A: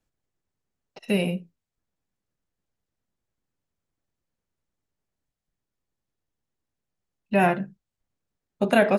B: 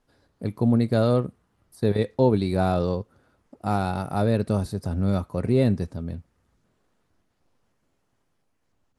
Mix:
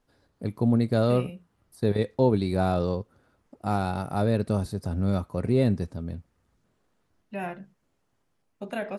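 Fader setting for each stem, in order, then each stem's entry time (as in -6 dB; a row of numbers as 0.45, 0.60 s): -13.5, -2.0 dB; 0.00, 0.00 s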